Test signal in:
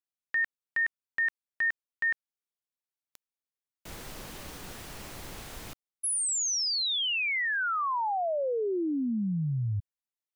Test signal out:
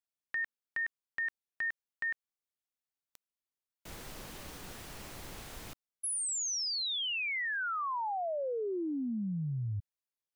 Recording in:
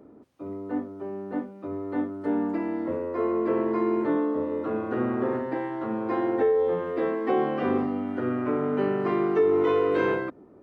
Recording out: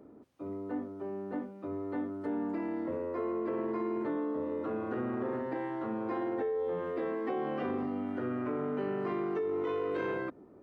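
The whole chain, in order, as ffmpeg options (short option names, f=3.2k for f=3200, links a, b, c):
-af "acompressor=threshold=-28dB:ratio=6:attack=9.9:release=44:knee=6,volume=-3.5dB"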